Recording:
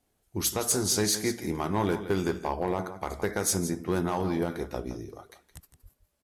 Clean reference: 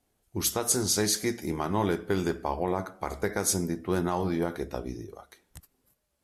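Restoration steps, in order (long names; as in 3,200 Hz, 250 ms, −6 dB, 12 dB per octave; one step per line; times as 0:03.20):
clipped peaks rebuilt −18.5 dBFS
0:05.82–0:05.94: high-pass filter 140 Hz 24 dB per octave
echo removal 167 ms −12.5 dB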